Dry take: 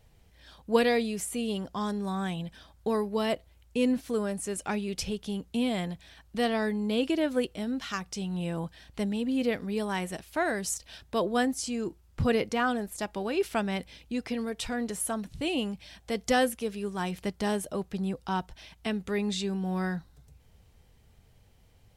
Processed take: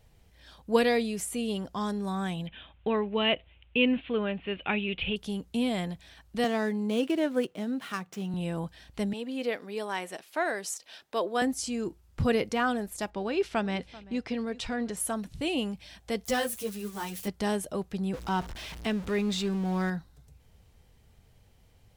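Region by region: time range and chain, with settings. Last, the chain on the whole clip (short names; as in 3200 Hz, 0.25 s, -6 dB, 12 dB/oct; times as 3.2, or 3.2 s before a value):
2.47–5.16 steep low-pass 3600 Hz 72 dB/oct + bell 2700 Hz +13.5 dB 0.75 oct
6.44–8.34 median filter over 9 samples + HPF 130 Hz 24 dB/oct
9.13–11.42 HPF 370 Hz + bell 9800 Hz -4 dB 1.6 oct
13.1–14.97 LPF 5900 Hz + echo 0.388 s -19 dB + mismatched tape noise reduction decoder only
16.25–17.28 switching spikes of -30 dBFS + ensemble effect
18.13–19.9 zero-crossing step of -37 dBFS + high shelf 9800 Hz -9.5 dB
whole clip: dry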